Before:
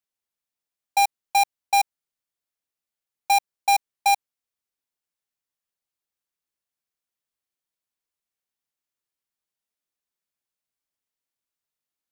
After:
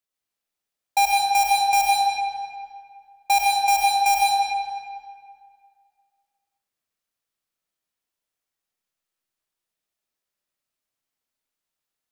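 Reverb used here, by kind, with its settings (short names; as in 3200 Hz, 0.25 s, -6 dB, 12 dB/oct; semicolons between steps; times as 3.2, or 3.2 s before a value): digital reverb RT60 2.1 s, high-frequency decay 0.75×, pre-delay 55 ms, DRR -3 dB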